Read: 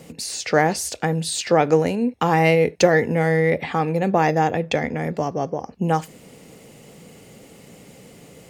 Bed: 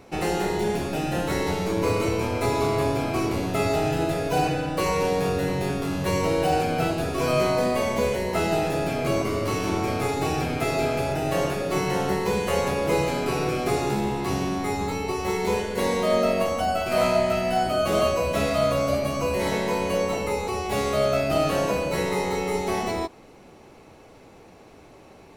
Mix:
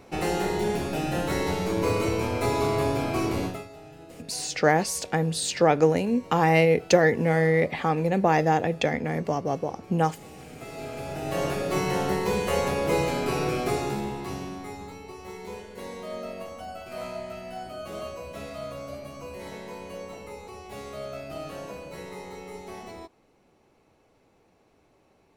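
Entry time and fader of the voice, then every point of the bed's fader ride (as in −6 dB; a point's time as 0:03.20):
4.10 s, −3.0 dB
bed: 0:03.46 −1.5 dB
0:03.68 −22.5 dB
0:10.29 −22.5 dB
0:11.52 −1.5 dB
0:13.60 −1.5 dB
0:15.01 −14.5 dB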